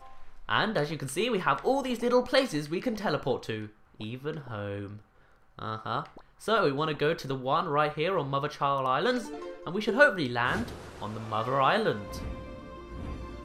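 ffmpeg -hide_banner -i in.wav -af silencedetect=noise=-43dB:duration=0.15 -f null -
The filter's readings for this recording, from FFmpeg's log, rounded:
silence_start: 3.68
silence_end: 3.95 | silence_duration: 0.26
silence_start: 4.98
silence_end: 5.58 | silence_duration: 0.61
silence_start: 6.21
silence_end: 6.41 | silence_duration: 0.20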